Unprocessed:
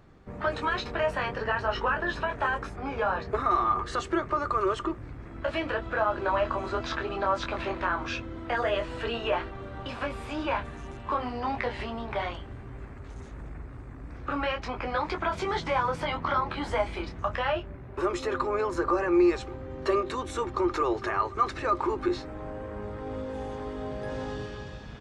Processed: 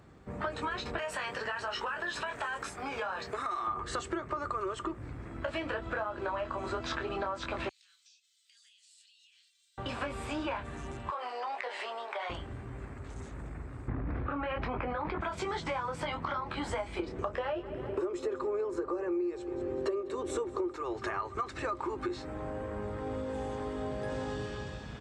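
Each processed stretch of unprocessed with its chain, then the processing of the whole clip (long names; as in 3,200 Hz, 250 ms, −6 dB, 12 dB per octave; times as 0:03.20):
0:00.98–0:03.67: spectral tilt +3 dB per octave + downward compressor 2 to 1, threshold −33 dBFS
0:07.69–0:09.78: inverse Chebyshev high-pass filter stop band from 770 Hz, stop band 80 dB + downward compressor 20 to 1, threshold −59 dBFS
0:11.10–0:12.30: high-pass filter 490 Hz 24 dB per octave + downward compressor 3 to 1, threshold −33 dBFS
0:13.88–0:15.21: high-frequency loss of the air 450 metres + envelope flattener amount 100%
0:16.99–0:20.76: parametric band 420 Hz +13.5 dB 1.1 octaves + repeating echo 196 ms, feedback 57%, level −18.5 dB
whole clip: high-pass filter 50 Hz; parametric band 7,900 Hz +9 dB 0.26 octaves; downward compressor 10 to 1, threshold −31 dBFS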